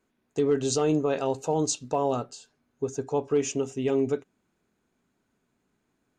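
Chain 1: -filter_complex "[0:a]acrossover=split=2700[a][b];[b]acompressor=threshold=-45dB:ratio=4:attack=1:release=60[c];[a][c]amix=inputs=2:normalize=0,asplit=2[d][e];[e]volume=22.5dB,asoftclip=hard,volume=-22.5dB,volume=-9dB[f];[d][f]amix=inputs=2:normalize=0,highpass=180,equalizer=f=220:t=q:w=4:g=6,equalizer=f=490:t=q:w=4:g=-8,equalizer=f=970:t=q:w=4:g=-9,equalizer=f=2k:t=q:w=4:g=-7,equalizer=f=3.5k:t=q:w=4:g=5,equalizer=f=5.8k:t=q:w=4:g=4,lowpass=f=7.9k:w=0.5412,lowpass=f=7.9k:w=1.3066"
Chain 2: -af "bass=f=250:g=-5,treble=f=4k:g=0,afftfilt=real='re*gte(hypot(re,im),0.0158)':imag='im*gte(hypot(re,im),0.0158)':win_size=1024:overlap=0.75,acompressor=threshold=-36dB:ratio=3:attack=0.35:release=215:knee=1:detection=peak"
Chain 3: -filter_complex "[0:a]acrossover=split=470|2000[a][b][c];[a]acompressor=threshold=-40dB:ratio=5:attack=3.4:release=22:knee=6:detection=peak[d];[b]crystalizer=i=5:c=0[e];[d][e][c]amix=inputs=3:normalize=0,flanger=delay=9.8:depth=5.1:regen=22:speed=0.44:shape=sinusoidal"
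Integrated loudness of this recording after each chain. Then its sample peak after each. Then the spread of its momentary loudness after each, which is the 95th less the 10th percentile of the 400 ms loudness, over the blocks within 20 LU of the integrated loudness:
-28.0, -40.0, -35.0 LUFS; -15.5, -27.5, -18.5 dBFS; 9, 8, 9 LU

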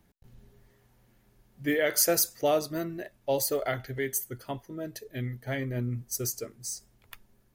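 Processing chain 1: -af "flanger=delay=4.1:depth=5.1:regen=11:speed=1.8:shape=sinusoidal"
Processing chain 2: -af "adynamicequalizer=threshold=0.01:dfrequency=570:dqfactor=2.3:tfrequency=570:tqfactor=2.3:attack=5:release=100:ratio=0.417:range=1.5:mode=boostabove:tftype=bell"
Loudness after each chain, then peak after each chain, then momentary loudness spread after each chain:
-33.5, -29.0 LUFS; -15.0, -12.0 dBFS; 15, 14 LU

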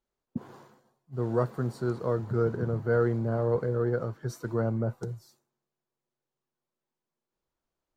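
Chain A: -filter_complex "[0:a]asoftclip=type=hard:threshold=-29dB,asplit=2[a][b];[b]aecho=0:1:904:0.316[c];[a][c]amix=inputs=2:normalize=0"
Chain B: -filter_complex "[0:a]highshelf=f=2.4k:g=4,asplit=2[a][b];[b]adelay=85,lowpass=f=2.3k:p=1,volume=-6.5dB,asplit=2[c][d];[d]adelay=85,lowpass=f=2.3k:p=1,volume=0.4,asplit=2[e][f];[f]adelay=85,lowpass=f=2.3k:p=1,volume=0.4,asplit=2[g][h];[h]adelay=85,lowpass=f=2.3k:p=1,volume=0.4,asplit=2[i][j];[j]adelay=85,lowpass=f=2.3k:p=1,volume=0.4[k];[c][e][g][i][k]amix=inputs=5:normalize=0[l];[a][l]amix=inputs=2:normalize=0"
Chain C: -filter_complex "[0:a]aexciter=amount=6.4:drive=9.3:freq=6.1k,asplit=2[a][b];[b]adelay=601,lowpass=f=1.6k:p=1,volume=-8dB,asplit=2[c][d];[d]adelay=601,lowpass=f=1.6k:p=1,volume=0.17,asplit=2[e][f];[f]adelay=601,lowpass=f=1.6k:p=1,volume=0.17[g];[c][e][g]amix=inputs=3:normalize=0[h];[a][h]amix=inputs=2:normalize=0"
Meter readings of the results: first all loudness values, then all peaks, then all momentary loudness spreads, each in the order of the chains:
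-34.5, -28.0, -29.0 LUFS; -26.5, -11.0, -13.0 dBFS; 13, 15, 17 LU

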